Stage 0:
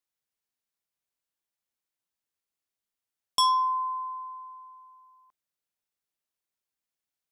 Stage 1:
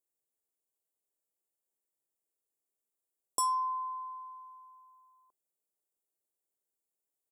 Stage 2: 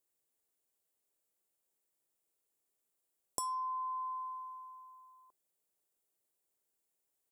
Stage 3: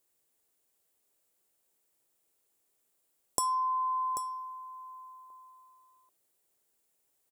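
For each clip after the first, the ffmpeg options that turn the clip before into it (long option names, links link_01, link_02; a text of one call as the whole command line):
ffmpeg -i in.wav -af "firequalizer=gain_entry='entry(170,0);entry(380,13);entry(2600,-28);entry(7300,10)':delay=0.05:min_phase=1,volume=-8dB" out.wav
ffmpeg -i in.wav -af "acompressor=threshold=-41dB:ratio=6,volume=4.5dB" out.wav
ffmpeg -i in.wav -af "aecho=1:1:788:0.266,volume=7.5dB" out.wav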